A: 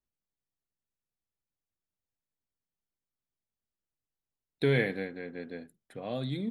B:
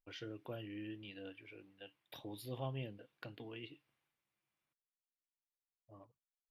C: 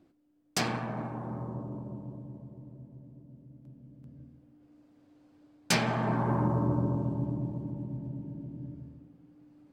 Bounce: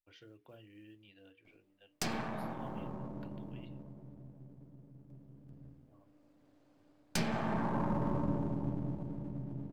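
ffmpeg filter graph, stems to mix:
-filter_complex "[1:a]equalizer=f=81:t=o:w=0.3:g=8,acrusher=bits=8:mode=log:mix=0:aa=0.000001,volume=-9.5dB[a];[2:a]aeval=exprs='if(lt(val(0),0),0.447*val(0),val(0))':c=same,adelay=1450,volume=-0.5dB[b];[a][b]amix=inputs=2:normalize=0,bandreject=f=60:t=h:w=6,bandreject=f=120:t=h:w=6,bandreject=f=180:t=h:w=6,bandreject=f=240:t=h:w=6,bandreject=f=300:t=h:w=6,bandreject=f=360:t=h:w=6,bandreject=f=420:t=h:w=6,bandreject=f=480:t=h:w=6,acrossover=split=480[c][d];[d]acompressor=threshold=-35dB:ratio=6[e];[c][e]amix=inputs=2:normalize=0"

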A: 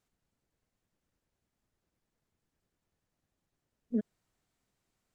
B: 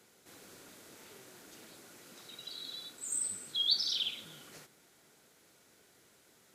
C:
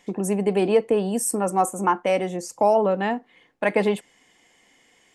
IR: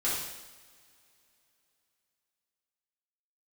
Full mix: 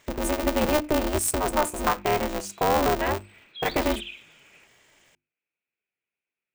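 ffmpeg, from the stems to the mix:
-filter_complex "[0:a]volume=-11dB[a];[1:a]agate=range=-23dB:threshold=-58dB:ratio=16:detection=peak,lowpass=f=2.5k:t=q:w=9.5,volume=-8.5dB[b];[2:a]alimiter=limit=-13dB:level=0:latency=1:release=105,aeval=exprs='val(0)*sgn(sin(2*PI*150*n/s))':c=same,volume=-0.5dB[c];[a][b][c]amix=inputs=3:normalize=0,bandreject=f=50:t=h:w=6,bandreject=f=100:t=h:w=6,bandreject=f=150:t=h:w=6,bandreject=f=200:t=h:w=6,bandreject=f=250:t=h:w=6,bandreject=f=300:t=h:w=6,bandreject=f=350:t=h:w=6"

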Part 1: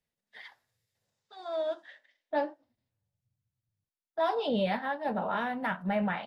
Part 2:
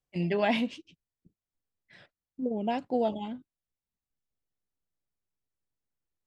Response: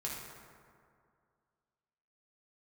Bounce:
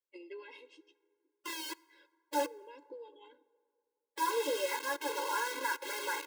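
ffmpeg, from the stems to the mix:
-filter_complex "[0:a]lowpass=3k,asubboost=boost=7.5:cutoff=130,acrusher=bits=5:mix=0:aa=0.000001,volume=1.5dB,asplit=2[a][b];[b]volume=-21dB[c];[1:a]acompressor=threshold=-37dB:ratio=6,volume=-6dB,asplit=2[d][e];[e]volume=-17dB[f];[2:a]atrim=start_sample=2205[g];[c][f]amix=inputs=2:normalize=0[h];[h][g]afir=irnorm=-1:irlink=0[i];[a][d][i]amix=inputs=3:normalize=0,afftfilt=real='re*eq(mod(floor(b*sr/1024/280),2),1)':imag='im*eq(mod(floor(b*sr/1024/280),2),1)':win_size=1024:overlap=0.75"

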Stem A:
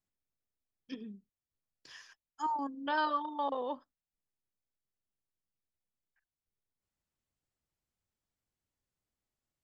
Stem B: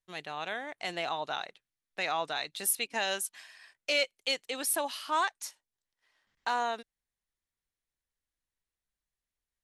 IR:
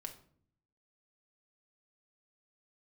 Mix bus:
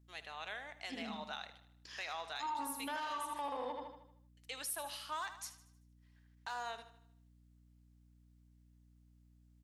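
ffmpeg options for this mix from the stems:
-filter_complex "[0:a]equalizer=f=190:w=0.86:g=10.5,bandreject=f=60:t=h:w=6,bandreject=f=120:t=h:w=6,bandreject=f=180:t=h:w=6,bandreject=f=240:t=h:w=6,bandreject=f=300:t=h:w=6,asoftclip=type=tanh:threshold=-25.5dB,volume=1.5dB,asplit=3[a][b][c];[b]volume=-4dB[d];[1:a]asoftclip=type=hard:threshold=-21.5dB,volume=-8.5dB,asplit=3[e][f][g];[e]atrim=end=3.79,asetpts=PTS-STARTPTS,afade=t=out:st=3.786:d=0.004:c=hsin[h];[f]atrim=start=3.79:end=4.37,asetpts=PTS-STARTPTS,volume=0[i];[g]atrim=start=4.37,asetpts=PTS-STARTPTS,afade=t=in:d=0.004:c=hsin[j];[h][i][j]concat=n=3:v=0:a=1,asplit=3[k][l][m];[l]volume=-5dB[n];[m]volume=-12dB[o];[c]apad=whole_len=425045[p];[k][p]sidechaincompress=threshold=-40dB:ratio=8:attack=16:release=121[q];[2:a]atrim=start_sample=2205[r];[n][r]afir=irnorm=-1:irlink=0[s];[d][o]amix=inputs=2:normalize=0,aecho=0:1:77|154|231|308|385|462|539:1|0.47|0.221|0.104|0.0488|0.0229|0.0108[t];[a][q][s][t]amix=inputs=4:normalize=0,highpass=f=970:p=1,aeval=exprs='val(0)+0.000631*(sin(2*PI*60*n/s)+sin(2*PI*2*60*n/s)/2+sin(2*PI*3*60*n/s)/3+sin(2*PI*4*60*n/s)/4+sin(2*PI*5*60*n/s)/5)':c=same,alimiter=level_in=7.5dB:limit=-24dB:level=0:latency=1:release=107,volume=-7.5dB"

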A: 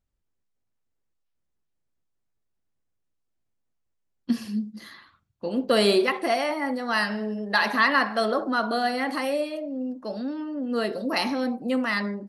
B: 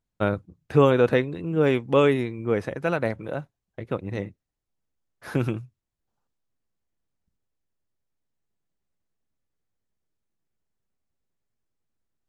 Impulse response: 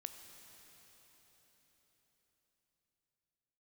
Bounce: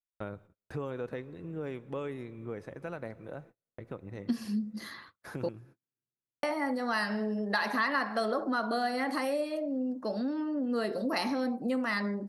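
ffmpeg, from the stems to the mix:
-filter_complex "[0:a]volume=2dB,asplit=3[a][b][c];[a]atrim=end=5.49,asetpts=PTS-STARTPTS,afade=t=out:st=5.486:d=0.004:c=hsin[d];[b]atrim=start=5.49:end=6.43,asetpts=PTS-STARTPTS,volume=0[e];[c]atrim=start=6.43,asetpts=PTS-STARTPTS,afade=t=in:d=0.004:c=hsin[f];[d][e][f]concat=n=3:v=0:a=1[g];[1:a]acompressor=threshold=-39dB:ratio=2,volume=-7.5dB,asplit=2[h][i];[i]volume=-4.5dB[j];[2:a]atrim=start_sample=2205[k];[j][k]afir=irnorm=-1:irlink=0[l];[g][h][l]amix=inputs=3:normalize=0,agate=range=-37dB:threshold=-52dB:ratio=16:detection=peak,equalizer=f=3k:w=2:g=-5,acompressor=threshold=-31dB:ratio=2.5"

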